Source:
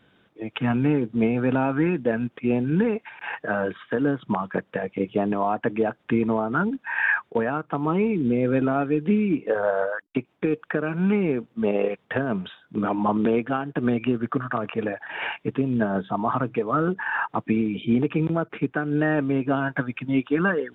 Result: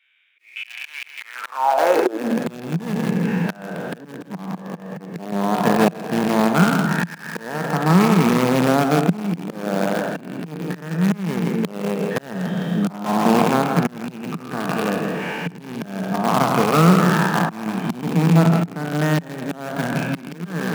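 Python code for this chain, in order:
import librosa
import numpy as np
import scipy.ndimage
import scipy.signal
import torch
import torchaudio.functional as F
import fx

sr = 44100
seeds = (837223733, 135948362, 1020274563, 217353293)

p1 = fx.spec_trails(x, sr, decay_s=2.9)
p2 = fx.highpass(p1, sr, hz=45.0, slope=6)
p3 = fx.low_shelf(p2, sr, hz=66.0, db=10.5)
p4 = fx.quant_companded(p3, sr, bits=2)
p5 = p3 + (p4 * librosa.db_to_amplitude(-5.0))
p6 = fx.dynamic_eq(p5, sr, hz=800.0, q=1.5, threshold_db=-27.0, ratio=4.0, max_db=6)
p7 = p6 + fx.echo_feedback(p6, sr, ms=163, feedback_pct=25, wet_db=-8.0, dry=0)
p8 = fx.auto_swell(p7, sr, attack_ms=525.0)
p9 = fx.filter_sweep_highpass(p8, sr, from_hz=2300.0, to_hz=170.0, start_s=1.17, end_s=2.47, q=7.3)
y = p9 * librosa.db_to_amplitude(-8.5)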